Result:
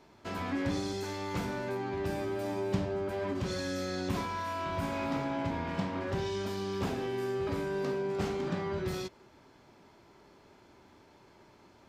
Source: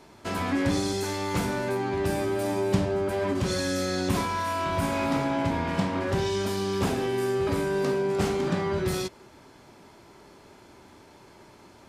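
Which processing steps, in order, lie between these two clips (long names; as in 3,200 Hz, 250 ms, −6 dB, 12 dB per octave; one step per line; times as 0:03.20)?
parametric band 10,000 Hz −9.5 dB 0.82 octaves
level −7 dB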